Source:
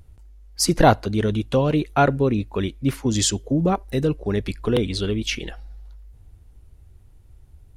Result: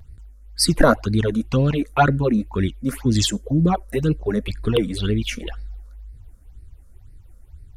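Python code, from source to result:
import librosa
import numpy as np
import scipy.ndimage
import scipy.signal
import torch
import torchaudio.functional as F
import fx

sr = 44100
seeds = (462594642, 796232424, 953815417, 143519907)

y = fx.phaser_stages(x, sr, stages=8, low_hz=100.0, high_hz=1000.0, hz=2.0, feedback_pct=35)
y = fx.vibrato(y, sr, rate_hz=1.0, depth_cents=32.0)
y = y * librosa.db_to_amplitude(4.0)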